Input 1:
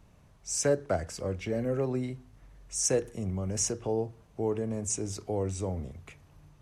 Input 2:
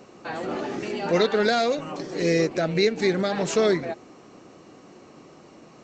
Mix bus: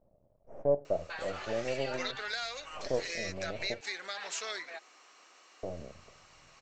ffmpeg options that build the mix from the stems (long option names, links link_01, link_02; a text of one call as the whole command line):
ffmpeg -i stem1.wav -i stem2.wav -filter_complex "[0:a]aeval=exprs='max(val(0),0)':channel_layout=same,lowpass=frequency=600:width_type=q:width=5.7,volume=-7.5dB,asplit=3[link_01][link_02][link_03];[link_01]atrim=end=3.81,asetpts=PTS-STARTPTS,afade=type=out:start_time=3.806:duration=0.004:curve=hsin[link_04];[link_02]atrim=start=3.81:end=5.63,asetpts=PTS-STARTPTS,volume=0[link_05];[link_03]atrim=start=5.63,asetpts=PTS-STARTPTS,afade=type=in:duration=0.004:curve=hsin[link_06];[link_04][link_05][link_06]concat=n=3:v=0:a=1[link_07];[1:a]highpass=1400,acompressor=threshold=-39dB:ratio=2,adelay=850,volume=-0.5dB[link_08];[link_07][link_08]amix=inputs=2:normalize=0" out.wav